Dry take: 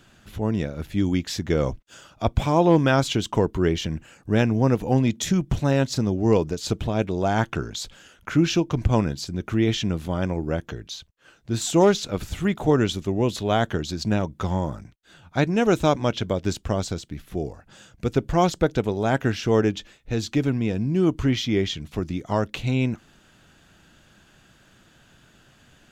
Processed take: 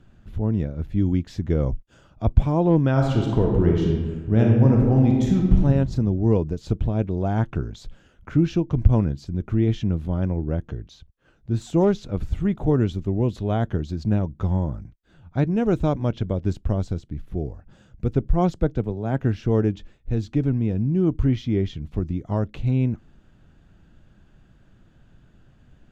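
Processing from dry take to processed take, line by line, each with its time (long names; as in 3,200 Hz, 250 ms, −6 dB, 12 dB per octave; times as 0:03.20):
0:02.91–0:05.61: thrown reverb, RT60 1.4 s, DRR −0.5 dB
0:18.29–0:19.21: multiband upward and downward expander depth 70%
whole clip: spectral tilt −3.5 dB per octave; level −7 dB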